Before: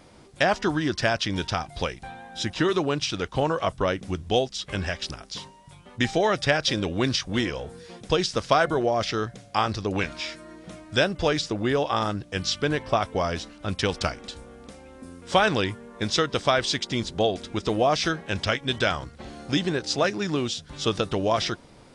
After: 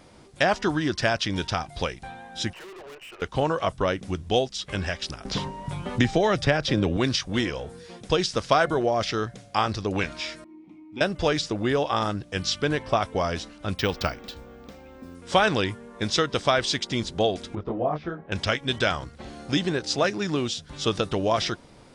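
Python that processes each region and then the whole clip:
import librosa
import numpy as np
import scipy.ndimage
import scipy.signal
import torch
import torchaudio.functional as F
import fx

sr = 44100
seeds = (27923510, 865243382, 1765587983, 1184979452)

y = fx.chain(x, sr, fx.brickwall_bandpass(low_hz=340.0, high_hz=3100.0),
    fx.tube_stage(drive_db=41.0, bias=0.4), at=(2.53, 3.22))
y = fx.chain(y, sr, fx.tilt_eq(slope=-1.5),
    fx.band_squash(depth_pct=70), at=(5.25, 6.97))
y = fx.chain(y, sr, fx.vowel_filter(vowel='u'),
    fx.low_shelf(hz=270.0, db=7.0), at=(10.44, 11.01))
y = fx.chain(y, sr, fx.lowpass(hz=5400.0, slope=12),
    fx.resample_bad(factor=2, down='none', up='hold'), at=(13.78, 15.15))
y = fx.chain(y, sr, fx.lowpass(hz=1100.0, slope=12),
    fx.detune_double(cents=27), at=(17.55, 18.32))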